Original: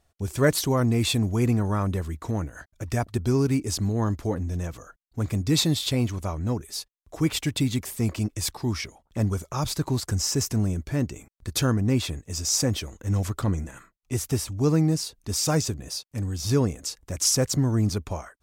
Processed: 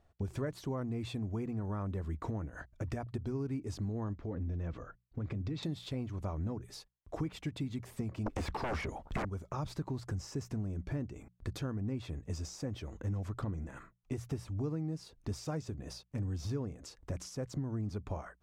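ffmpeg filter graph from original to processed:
-filter_complex "[0:a]asettb=1/sr,asplit=3[s0][s1][s2];[s0]atrim=end=4.134[s3];[s1]atrim=start=4.13:end=5.63,asetpts=PTS-STARTPTS,afade=t=in:d=0.004:c=qsin,afade=t=out:st=1.496:d=0.004:c=qsin,lowpass=3900,equalizer=f=830:w=1.3:g=-4,acompressor=threshold=0.0282:ratio=6:attack=3.2:release=140:knee=1:detection=peak[s4];[s2]atrim=start=5.626[s5];[s3][s4]acrossfade=d=0.004:c1=hsin:c2=qsin[s6];[s6][s5]acrossfade=d=0.004:c1=qsin:c2=hsin,asettb=1/sr,asplit=3[s7][s8][s9];[s7]atrim=end=8.264[s10];[s8]atrim=start=8.26:end=9.25,asetpts=PTS-STARTPTS,afade=t=in:d=0.004:c=qsin,afade=t=out:st=0.986:d=0.004:c=qsin,acrossover=split=2700[s11][s12];[s12]acompressor=threshold=0.00708:ratio=4:attack=1:release=60[s13];[s11][s13]amix=inputs=2:normalize=0,aeval=exprs='0.2*sin(PI/2*8.91*val(0)/0.2)':c=same[s14];[s9]atrim=start=9.246[s15];[s10][s14]acrossfade=d=0.004:c1=hsin:c2=qsin[s16];[s16][s15]acrossfade=d=0.004:c1=qsin:c2=hsin,acompressor=threshold=0.02:ratio=10,lowpass=f=1300:p=1,bandreject=f=60:t=h:w=6,bandreject=f=120:t=h:w=6,bandreject=f=180:t=h:w=6,volume=1.12"

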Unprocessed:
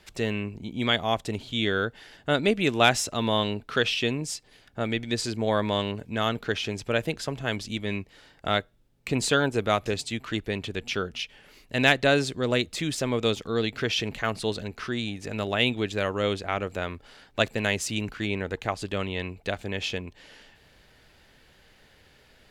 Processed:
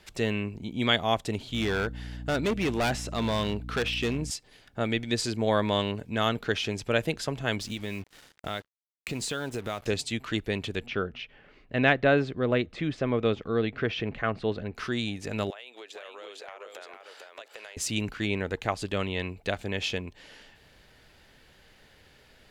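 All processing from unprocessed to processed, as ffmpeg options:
-filter_complex "[0:a]asettb=1/sr,asplit=3[s0][s1][s2];[s0]atrim=end=1.534[s3];[s1]atrim=start=1.53:end=4.31,asetpts=PTS-STARTPTS,afade=t=in:d=0.004:c=qsin,afade=t=out:st=2.776:d=0.004:c=qsin,acrossover=split=3000[s4][s5];[s5]acompressor=threshold=0.0141:ratio=4:attack=1:release=60[s6];[s4][s6]amix=inputs=2:normalize=0,aeval=exprs='val(0)+0.0141*(sin(2*PI*60*n/s)+sin(2*PI*2*60*n/s)/2+sin(2*PI*3*60*n/s)/3+sin(2*PI*4*60*n/s)/4+sin(2*PI*5*60*n/s)/5)':c=same,asoftclip=type=hard:threshold=0.0708[s7];[s2]atrim=start=4.306[s8];[s3][s7]acrossfade=d=0.004:c1=hsin:c2=qsin[s9];[s9][s8]acrossfade=d=0.004:c1=qsin:c2=hsin,asettb=1/sr,asplit=3[s10][s11][s12];[s10]atrim=end=7.604[s13];[s11]atrim=start=7.6:end=9.86,asetpts=PTS-STARTPTS,afade=t=in:d=0.004:c=qsin,afade=t=out:st=2.256:d=0.004:c=qsin,highshelf=f=4000:g=2,acompressor=threshold=0.0316:ratio=4:attack=3.2:release=140:knee=1:detection=peak,acrusher=bits=7:mix=0:aa=0.5[s14];[s12]atrim=start=9.856[s15];[s13][s14]acrossfade=d=0.004:c1=hsin:c2=qsin[s16];[s16][s15]acrossfade=d=0.004:c1=qsin:c2=hsin,asettb=1/sr,asplit=3[s17][s18][s19];[s17]atrim=end=10.864[s20];[s18]atrim=start=10.86:end=14.75,asetpts=PTS-STARTPTS,afade=t=in:d=0.004:c=qsin,afade=t=out:st=3.886:d=0.004:c=qsin,lowpass=2100,bandreject=f=910:w=11[s21];[s19]atrim=start=14.746[s22];[s20][s21]acrossfade=d=0.004:c1=hsin:c2=qsin[s23];[s23][s22]acrossfade=d=0.004:c1=qsin:c2=hsin,asettb=1/sr,asplit=3[s24][s25][s26];[s24]atrim=end=15.504[s27];[s25]atrim=start=15.5:end=17.77,asetpts=PTS-STARTPTS,afade=t=in:d=0.004:c=qsin,afade=t=out:st=2.266:d=0.004:c=qsin,highpass=f=450:w=0.5412,highpass=f=450:w=1.3066,acompressor=threshold=0.01:ratio=12:attack=3.2:release=140:knee=1:detection=peak,aecho=1:1:450:0.596,atrim=end_sample=100107[s28];[s26]atrim=start=17.766[s29];[s27][s28]acrossfade=d=0.004:c1=hsin:c2=qsin[s30];[s30][s29]acrossfade=d=0.004:c1=qsin:c2=hsin"

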